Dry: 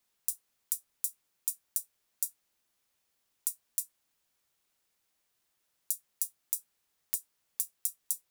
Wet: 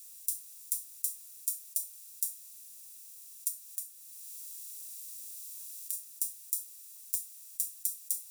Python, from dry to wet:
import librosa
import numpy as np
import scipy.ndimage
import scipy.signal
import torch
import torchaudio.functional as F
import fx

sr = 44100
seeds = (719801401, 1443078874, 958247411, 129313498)

y = fx.bin_compress(x, sr, power=0.4)
y = fx.notch_comb(y, sr, f0_hz=270.0)
y = fx.band_squash(y, sr, depth_pct=70, at=(3.48, 5.93))